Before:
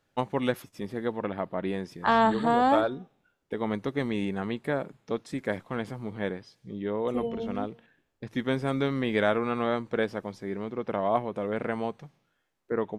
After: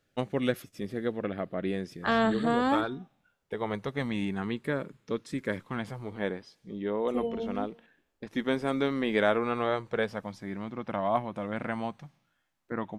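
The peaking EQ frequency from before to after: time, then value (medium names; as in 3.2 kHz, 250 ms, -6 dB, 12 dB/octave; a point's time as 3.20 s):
peaking EQ -13 dB 0.44 oct
2.43 s 930 Hz
3.67 s 240 Hz
4.65 s 740 Hz
5.64 s 740 Hz
6.20 s 120 Hz
9.18 s 120 Hz
10.34 s 430 Hz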